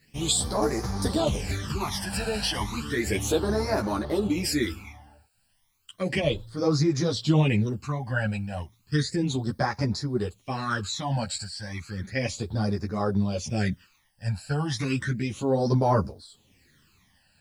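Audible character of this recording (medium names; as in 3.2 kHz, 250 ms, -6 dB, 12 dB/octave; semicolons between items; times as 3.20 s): a quantiser's noise floor 12-bit, dither triangular; phasing stages 12, 0.33 Hz, lowest notch 350–3000 Hz; tremolo triangle 0.97 Hz, depth 30%; a shimmering, thickened sound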